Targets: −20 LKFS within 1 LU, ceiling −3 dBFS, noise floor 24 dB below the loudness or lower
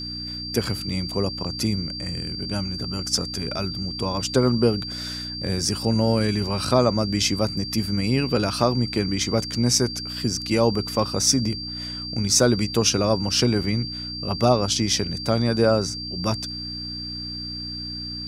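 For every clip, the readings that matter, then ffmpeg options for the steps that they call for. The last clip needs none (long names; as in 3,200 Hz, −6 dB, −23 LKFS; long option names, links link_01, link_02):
mains hum 60 Hz; hum harmonics up to 300 Hz; level of the hum −33 dBFS; interfering tone 4,700 Hz; level of the tone −31 dBFS; integrated loudness −23.0 LKFS; sample peak −4.0 dBFS; target loudness −20.0 LKFS
→ -af "bandreject=frequency=60:width_type=h:width=4,bandreject=frequency=120:width_type=h:width=4,bandreject=frequency=180:width_type=h:width=4,bandreject=frequency=240:width_type=h:width=4,bandreject=frequency=300:width_type=h:width=4"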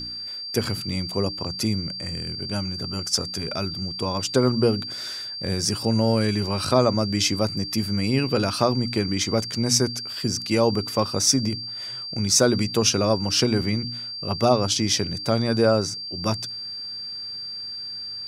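mains hum none found; interfering tone 4,700 Hz; level of the tone −31 dBFS
→ -af "bandreject=frequency=4700:width=30"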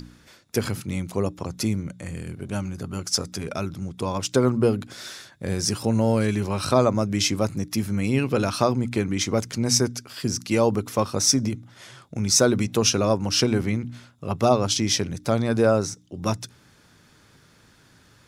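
interfering tone none found; integrated loudness −23.5 LKFS; sample peak −4.0 dBFS; target loudness −20.0 LKFS
→ -af "volume=3.5dB,alimiter=limit=-3dB:level=0:latency=1"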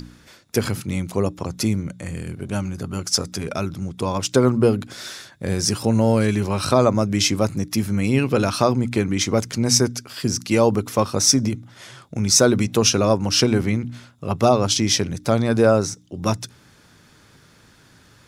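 integrated loudness −20.0 LKFS; sample peak −3.0 dBFS; background noise floor −53 dBFS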